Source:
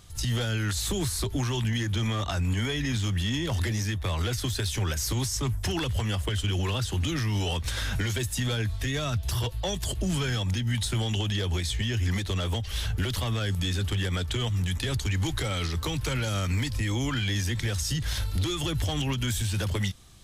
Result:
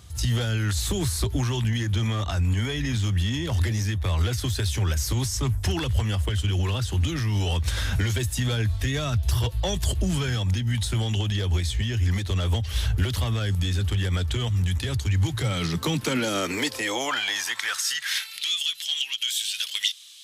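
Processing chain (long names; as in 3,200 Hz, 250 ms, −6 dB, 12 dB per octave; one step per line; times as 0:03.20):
high-pass filter sweep 65 Hz → 3,200 Hz, 0:14.87–0:18.61
speech leveller 0.5 s
level +1 dB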